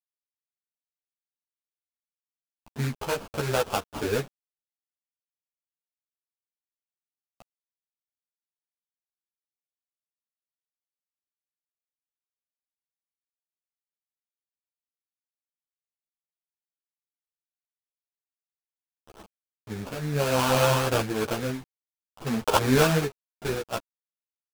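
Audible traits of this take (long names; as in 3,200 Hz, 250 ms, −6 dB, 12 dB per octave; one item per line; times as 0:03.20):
aliases and images of a low sample rate 2,000 Hz, jitter 20%
tremolo triangle 0.54 Hz, depth 70%
a quantiser's noise floor 8 bits, dither none
a shimmering, thickened sound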